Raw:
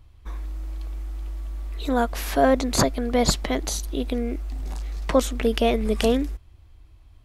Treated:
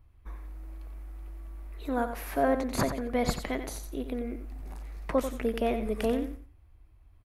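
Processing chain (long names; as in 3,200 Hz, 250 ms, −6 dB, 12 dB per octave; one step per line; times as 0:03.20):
flat-topped bell 4,900 Hz −8.5 dB
on a send: repeating echo 90 ms, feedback 22%, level −9 dB
0:02.62–0:03.67: on the sum: dynamic equaliser 3,000 Hz, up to +4 dB, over −41 dBFS, Q 0.96
level −7.5 dB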